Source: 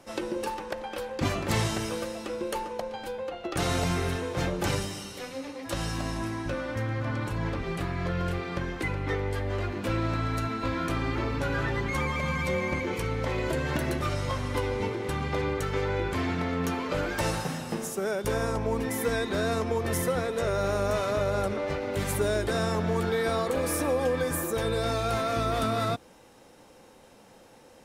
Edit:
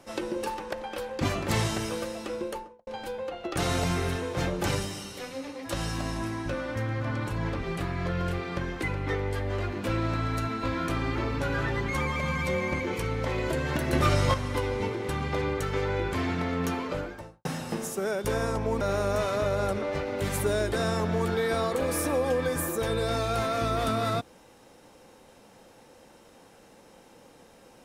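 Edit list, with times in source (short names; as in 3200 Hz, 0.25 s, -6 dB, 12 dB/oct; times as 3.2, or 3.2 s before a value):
2.35–2.87 studio fade out
13.93–14.34 gain +6.5 dB
16.71–17.45 studio fade out
18.81–20.56 cut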